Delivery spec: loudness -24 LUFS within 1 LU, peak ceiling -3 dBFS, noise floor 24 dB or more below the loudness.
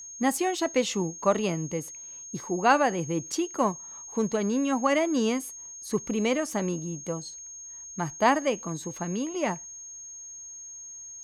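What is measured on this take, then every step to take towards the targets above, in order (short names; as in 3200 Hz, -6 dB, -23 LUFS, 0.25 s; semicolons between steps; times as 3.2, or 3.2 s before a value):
steady tone 6500 Hz; tone level -40 dBFS; loudness -28.0 LUFS; peak -9.5 dBFS; loudness target -24.0 LUFS
-> notch 6500 Hz, Q 30; gain +4 dB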